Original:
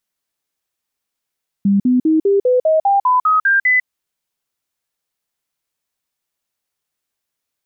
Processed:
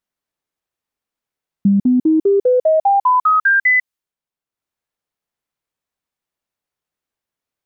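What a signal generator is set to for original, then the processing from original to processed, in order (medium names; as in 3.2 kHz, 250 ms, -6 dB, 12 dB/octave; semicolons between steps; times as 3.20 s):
stepped sine 199 Hz up, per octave 3, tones 11, 0.15 s, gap 0.05 s -10 dBFS
transient shaper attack +3 dB, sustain -5 dB; tape noise reduction on one side only decoder only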